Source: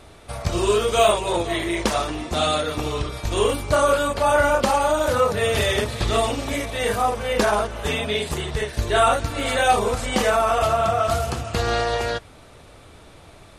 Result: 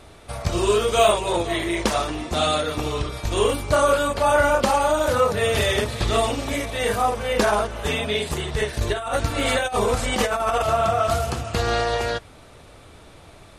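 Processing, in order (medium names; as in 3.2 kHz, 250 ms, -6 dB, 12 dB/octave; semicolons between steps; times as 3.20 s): 8.58–10.70 s: compressor with a negative ratio -21 dBFS, ratio -0.5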